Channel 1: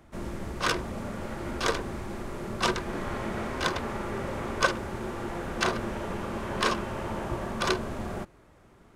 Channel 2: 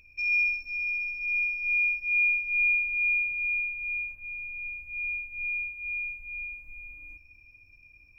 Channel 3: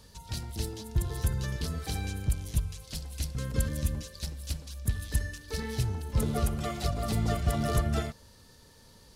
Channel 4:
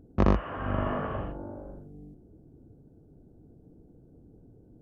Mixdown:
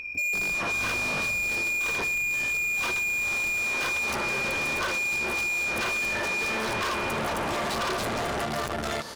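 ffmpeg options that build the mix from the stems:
ffmpeg -i stem1.wav -i stem2.wav -i stem3.wav -i stem4.wav -filter_complex "[0:a]adelay=200,volume=-9dB[link_01];[1:a]highshelf=frequency=3300:gain=-7,volume=-3dB[link_02];[2:a]aeval=exprs='(tanh(70.8*val(0)+0.75)-tanh(0.75))/70.8':channel_layout=same,adelay=900,volume=-0.5dB[link_03];[3:a]bass=frequency=250:gain=11,treble=frequency=4000:gain=12,aeval=exprs='0.126*(abs(mod(val(0)/0.126+3,4)-2)-1)':channel_layout=same,adelay=150,volume=-9.5dB[link_04];[link_01][link_02][link_03][link_04]amix=inputs=4:normalize=0,asplit=2[link_05][link_06];[link_06]highpass=frequency=720:poles=1,volume=33dB,asoftclip=type=tanh:threshold=-15dB[link_07];[link_05][link_07]amix=inputs=2:normalize=0,lowpass=frequency=4900:poles=1,volume=-6dB,acompressor=threshold=-27dB:ratio=6" out.wav

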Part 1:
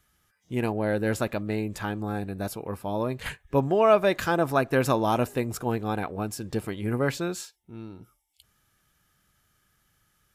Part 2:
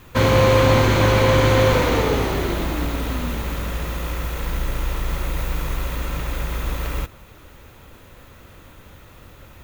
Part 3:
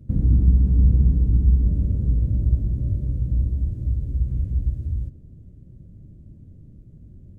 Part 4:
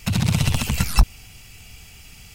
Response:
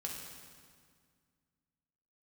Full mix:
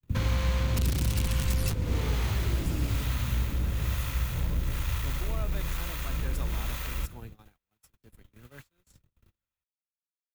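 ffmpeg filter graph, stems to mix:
-filter_complex "[0:a]highshelf=frequency=11000:gain=12,adelay=1500,volume=-13.5dB[link_01];[1:a]asoftclip=type=tanh:threshold=-15dB,acrossover=split=530[link_02][link_03];[link_02]aeval=exprs='val(0)*(1-0.7/2+0.7/2*cos(2*PI*1.1*n/s))':channel_layout=same[link_04];[link_03]aeval=exprs='val(0)*(1-0.7/2-0.7/2*cos(2*PI*1.1*n/s))':channel_layout=same[link_05];[link_04][link_05]amix=inputs=2:normalize=0,volume=2dB[link_06];[2:a]highpass=50,volume=-2.5dB,asplit=2[link_07][link_08];[link_08]volume=-14dB[link_09];[3:a]aeval=exprs='(mod(5.62*val(0)+1,2)-1)/5.62':channel_layout=same,adelay=700,volume=2dB[link_10];[4:a]atrim=start_sample=2205[link_11];[link_09][link_11]afir=irnorm=-1:irlink=0[link_12];[link_01][link_06][link_07][link_10][link_12]amix=inputs=5:normalize=0,equalizer=frequency=520:width=0.38:gain=-9,agate=range=-44dB:threshold=-41dB:ratio=16:detection=peak,acrossover=split=100|310[link_13][link_14][link_15];[link_13]acompressor=threshold=-28dB:ratio=4[link_16];[link_14]acompressor=threshold=-32dB:ratio=4[link_17];[link_15]acompressor=threshold=-36dB:ratio=4[link_18];[link_16][link_17][link_18]amix=inputs=3:normalize=0"

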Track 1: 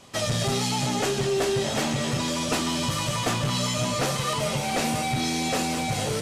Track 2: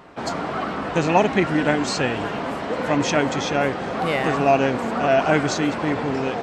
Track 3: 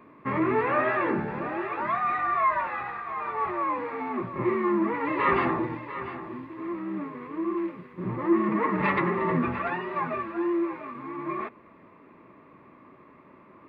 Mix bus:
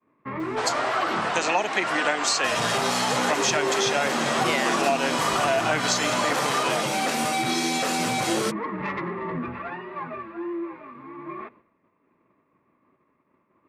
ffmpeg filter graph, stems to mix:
ffmpeg -i stem1.wav -i stem2.wav -i stem3.wav -filter_complex "[0:a]highpass=240,equalizer=frequency=1400:width=1.5:gain=5.5,alimiter=limit=-17.5dB:level=0:latency=1:release=34,adelay=2300,volume=2.5dB[link_01];[1:a]highpass=690,highshelf=frequency=5600:gain=9.5,acontrast=26,adelay=400,volume=-0.5dB[link_02];[2:a]asoftclip=type=tanh:threshold=-16dB,volume=-4dB[link_03];[link_01][link_02][link_03]amix=inputs=3:normalize=0,agate=range=-33dB:threshold=-48dB:ratio=3:detection=peak,acrossover=split=270[link_04][link_05];[link_05]acompressor=threshold=-20dB:ratio=6[link_06];[link_04][link_06]amix=inputs=2:normalize=0" out.wav

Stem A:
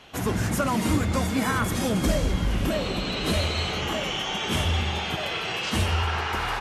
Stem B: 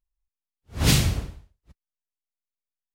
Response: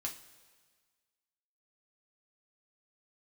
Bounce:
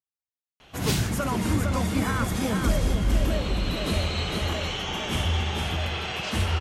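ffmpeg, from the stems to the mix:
-filter_complex "[0:a]adelay=600,volume=-3.5dB,asplit=2[link_01][link_02];[link_02]volume=-4.5dB[link_03];[1:a]highpass=frequency=120:width=0.5412,highpass=frequency=120:width=1.3066,volume=-8.5dB,asplit=2[link_04][link_05];[link_05]volume=-9.5dB[link_06];[2:a]atrim=start_sample=2205[link_07];[link_06][link_07]afir=irnorm=-1:irlink=0[link_08];[link_03]aecho=0:1:457:1[link_09];[link_01][link_04][link_08][link_09]amix=inputs=4:normalize=0,lowshelf=frequency=79:gain=7"

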